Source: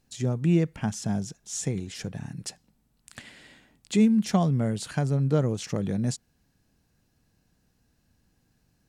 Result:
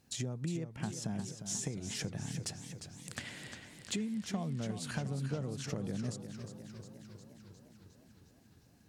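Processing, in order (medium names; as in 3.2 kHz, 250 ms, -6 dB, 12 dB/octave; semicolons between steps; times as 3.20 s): de-esser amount 60%; high-pass 61 Hz; compression 10:1, threshold -37 dBFS, peak gain reduction 21 dB; modulated delay 355 ms, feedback 67%, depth 96 cents, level -9.5 dB; trim +2 dB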